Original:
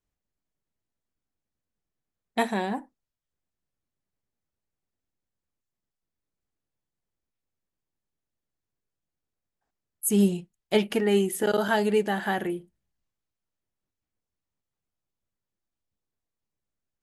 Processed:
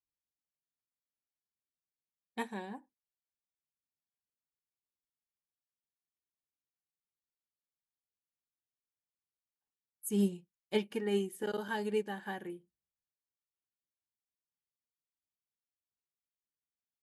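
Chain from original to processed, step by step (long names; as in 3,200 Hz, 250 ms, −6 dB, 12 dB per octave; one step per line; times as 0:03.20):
notch comb filter 670 Hz
expander for the loud parts 1.5 to 1, over −37 dBFS
level −8 dB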